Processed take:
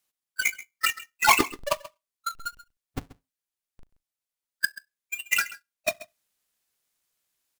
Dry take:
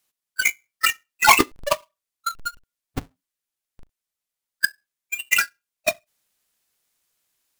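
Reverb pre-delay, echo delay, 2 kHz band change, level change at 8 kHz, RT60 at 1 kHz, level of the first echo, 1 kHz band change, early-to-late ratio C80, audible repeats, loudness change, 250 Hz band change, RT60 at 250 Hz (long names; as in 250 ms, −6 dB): no reverb audible, 133 ms, −5.0 dB, −5.0 dB, no reverb audible, −17.5 dB, −5.0 dB, no reverb audible, 1, −5.0 dB, −5.0 dB, no reverb audible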